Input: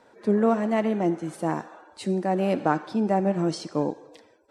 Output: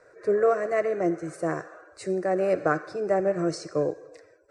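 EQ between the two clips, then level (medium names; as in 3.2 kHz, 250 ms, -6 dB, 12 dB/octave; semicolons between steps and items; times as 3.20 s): low-pass 8.7 kHz 24 dB/octave; peaking EQ 210 Hz -4 dB 0.22 oct; static phaser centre 880 Hz, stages 6; +3.5 dB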